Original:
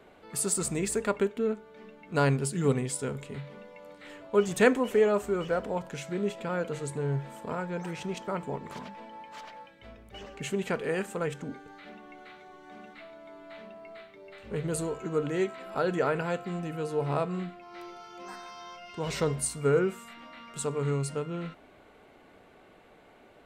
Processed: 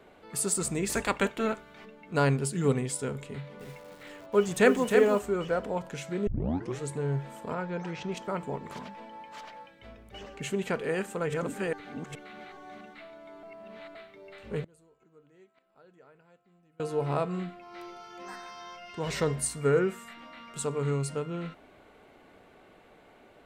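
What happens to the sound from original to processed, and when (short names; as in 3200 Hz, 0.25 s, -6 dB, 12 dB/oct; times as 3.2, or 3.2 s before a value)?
0.88–1.84 spectral limiter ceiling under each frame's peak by 18 dB
3.28–5.19 lo-fi delay 0.311 s, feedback 35%, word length 8-bit, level -5 dB
6.27 tape start 0.54 s
7.54–8.12 LPF 6000 Hz 24 dB/oct
10.89–12.81 reverse delay 0.421 s, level -1 dB
13.43–13.95 reverse
14.64–16.8 flipped gate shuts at -34 dBFS, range -30 dB
18.1–20.13 bell 1800 Hz +7 dB 0.2 oct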